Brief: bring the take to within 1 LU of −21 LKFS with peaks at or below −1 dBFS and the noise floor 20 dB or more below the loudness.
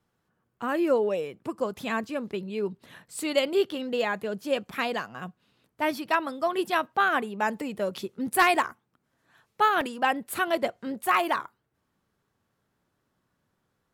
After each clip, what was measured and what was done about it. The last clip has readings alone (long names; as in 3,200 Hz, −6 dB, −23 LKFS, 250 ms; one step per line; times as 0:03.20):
number of dropouts 1; longest dropout 2.4 ms; integrated loudness −27.5 LKFS; sample peak −11.0 dBFS; target loudness −21.0 LKFS
→ repair the gap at 0:09.81, 2.4 ms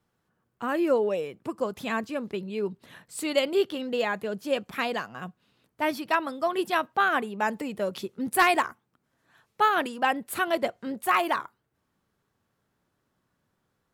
number of dropouts 0; integrated loudness −27.5 LKFS; sample peak −11.0 dBFS; target loudness −21.0 LKFS
→ level +6.5 dB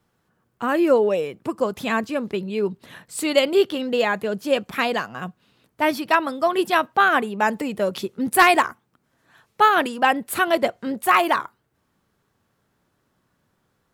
integrated loudness −21.0 LKFS; sample peak −4.5 dBFS; background noise floor −70 dBFS